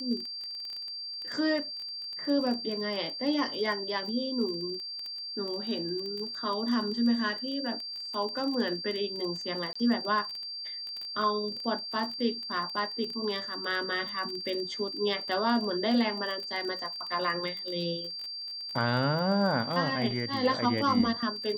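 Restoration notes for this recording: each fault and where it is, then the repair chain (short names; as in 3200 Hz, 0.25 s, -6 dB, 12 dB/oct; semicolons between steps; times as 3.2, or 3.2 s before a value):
crackle 20/s -34 dBFS
tone 4700 Hz -36 dBFS
9.73–9.76 gap 25 ms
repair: de-click; notch 4700 Hz, Q 30; interpolate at 9.73, 25 ms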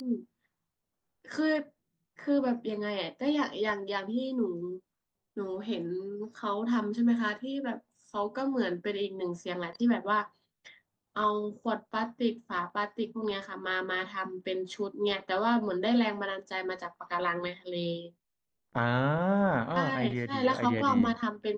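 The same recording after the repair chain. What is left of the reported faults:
none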